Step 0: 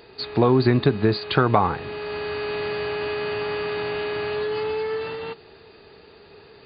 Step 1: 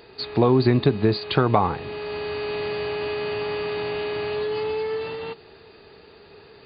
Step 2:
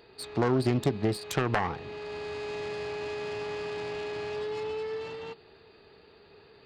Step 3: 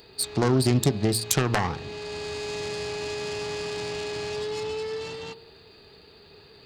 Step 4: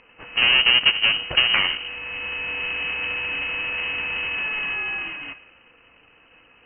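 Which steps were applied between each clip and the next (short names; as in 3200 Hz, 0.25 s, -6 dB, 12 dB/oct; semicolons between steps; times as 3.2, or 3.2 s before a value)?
dynamic EQ 1500 Hz, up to -5 dB, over -43 dBFS, Q 2.2
self-modulated delay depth 0.44 ms; gain -7.5 dB
tone controls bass +5 dB, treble +15 dB; de-hum 114.2 Hz, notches 16; gain +2 dB
half-waves squared off; inverted band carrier 3000 Hz; low-pass opened by the level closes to 1500 Hz, open at -16.5 dBFS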